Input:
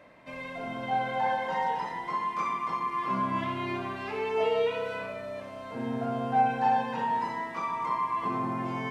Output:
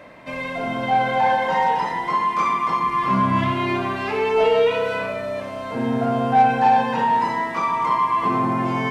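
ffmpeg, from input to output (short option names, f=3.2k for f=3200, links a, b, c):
-filter_complex "[0:a]asplit=3[a][b][c];[a]afade=t=out:st=2.81:d=0.02[d];[b]asubboost=boost=2.5:cutoff=210,afade=t=in:st=2.81:d=0.02,afade=t=out:st=3.51:d=0.02[e];[c]afade=t=in:st=3.51:d=0.02[f];[d][e][f]amix=inputs=3:normalize=0,asplit=2[g][h];[h]asoftclip=type=tanh:threshold=-26dB,volume=-3.5dB[i];[g][i]amix=inputs=2:normalize=0,volume=6.5dB"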